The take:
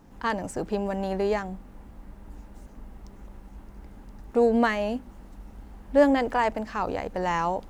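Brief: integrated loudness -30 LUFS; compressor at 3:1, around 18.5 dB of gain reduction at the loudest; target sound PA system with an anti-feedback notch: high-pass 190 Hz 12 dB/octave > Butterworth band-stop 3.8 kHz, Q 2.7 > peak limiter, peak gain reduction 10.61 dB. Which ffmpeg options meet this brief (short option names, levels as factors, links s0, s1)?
-af "acompressor=threshold=0.01:ratio=3,highpass=190,asuperstop=centerf=3800:order=8:qfactor=2.7,volume=7.5,alimiter=limit=0.119:level=0:latency=1"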